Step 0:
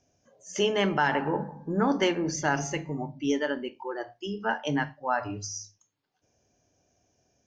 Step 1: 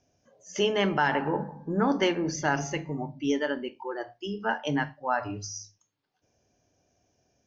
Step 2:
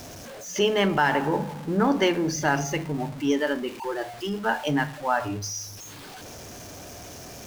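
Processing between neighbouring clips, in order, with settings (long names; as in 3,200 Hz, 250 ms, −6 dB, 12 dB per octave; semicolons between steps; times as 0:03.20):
low-pass filter 6,400 Hz 24 dB per octave
converter with a step at zero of −38 dBFS; level +2.5 dB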